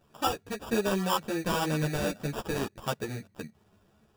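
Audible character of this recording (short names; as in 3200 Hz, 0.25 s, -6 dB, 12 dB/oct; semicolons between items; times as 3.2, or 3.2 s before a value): aliases and images of a low sample rate 2100 Hz, jitter 0%; a shimmering, thickened sound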